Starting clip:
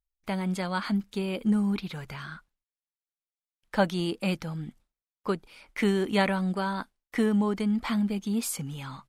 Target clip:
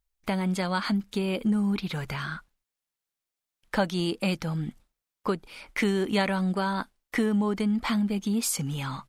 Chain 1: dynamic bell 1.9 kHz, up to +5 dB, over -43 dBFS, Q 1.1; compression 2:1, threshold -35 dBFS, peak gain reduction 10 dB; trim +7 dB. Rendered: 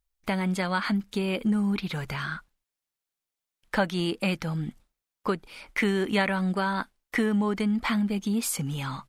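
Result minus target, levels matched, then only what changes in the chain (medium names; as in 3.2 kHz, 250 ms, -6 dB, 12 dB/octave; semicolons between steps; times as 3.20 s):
2 kHz band +2.5 dB
change: dynamic bell 5.6 kHz, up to +5 dB, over -43 dBFS, Q 1.1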